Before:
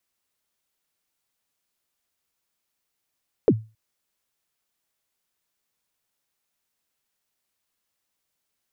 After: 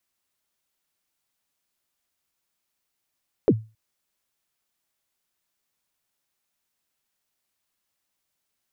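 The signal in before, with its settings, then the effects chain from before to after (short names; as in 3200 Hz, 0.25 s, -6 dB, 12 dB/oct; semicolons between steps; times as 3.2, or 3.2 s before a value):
kick drum length 0.27 s, from 520 Hz, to 110 Hz, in 54 ms, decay 0.29 s, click off, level -9 dB
notch 470 Hz, Q 12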